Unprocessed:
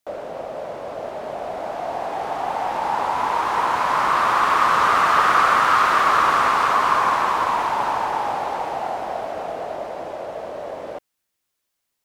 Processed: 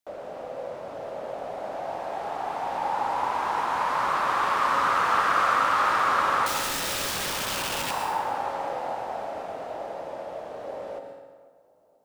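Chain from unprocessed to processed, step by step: darkening echo 0.487 s, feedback 57%, low-pass 1400 Hz, level -21 dB; 6.46–7.91 wrapped overs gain 18.5 dB; on a send at -3.5 dB: reverb RT60 1.4 s, pre-delay 0.11 s; on the sum: gain -7.5 dB

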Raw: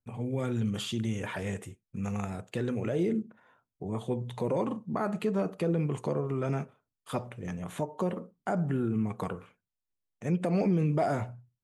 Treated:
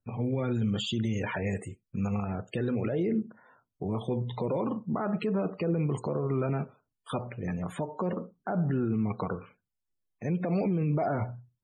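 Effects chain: limiter -25 dBFS, peak gain reduction 7 dB; loudest bins only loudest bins 64; gain +4 dB

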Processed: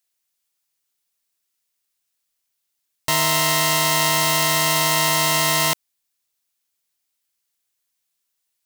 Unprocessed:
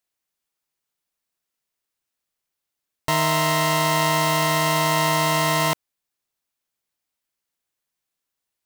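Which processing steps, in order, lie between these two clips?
high shelf 2200 Hz +11 dB; gain -3 dB

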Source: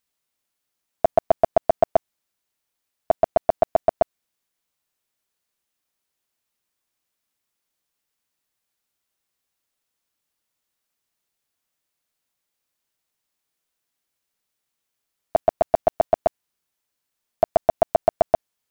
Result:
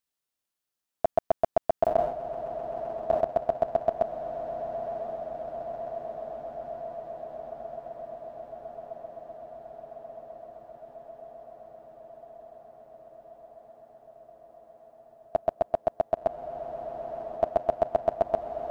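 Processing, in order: bell 2200 Hz -3.5 dB 0.25 oct; diffused feedback echo 1.069 s, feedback 79%, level -7.5 dB; 1.81–3.21 sustainer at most 85 dB/s; gain -7 dB

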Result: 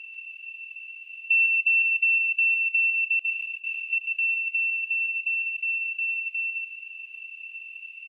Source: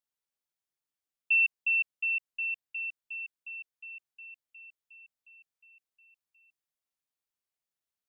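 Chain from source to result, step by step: per-bin compression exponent 0.2; dynamic EQ 2500 Hz, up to +6 dB, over -41 dBFS, Q 6.2; 3.19–3.93 negative-ratio compressor -38 dBFS, ratio -1; echo 0.143 s -3.5 dB

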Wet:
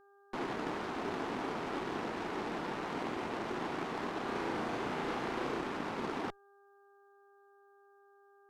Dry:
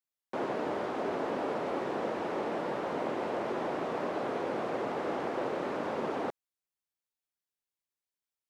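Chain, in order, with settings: bell 560 Hz -11.5 dB 0.63 oct; added harmonics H 3 -19 dB, 8 -23 dB, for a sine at -25 dBFS; buzz 400 Hz, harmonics 4, -65 dBFS -4 dB/oct; 4.23–5.61 flutter echo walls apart 6.1 m, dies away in 0.43 s; gain +1.5 dB

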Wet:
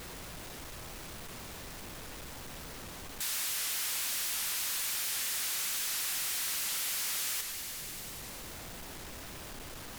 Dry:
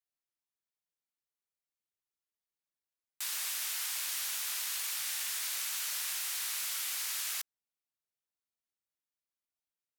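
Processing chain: added noise pink -66 dBFS; on a send: thinning echo 98 ms, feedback 78%, level -18 dB; on the sum: power-law curve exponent 0.35; record warp 78 rpm, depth 160 cents; gain -5.5 dB

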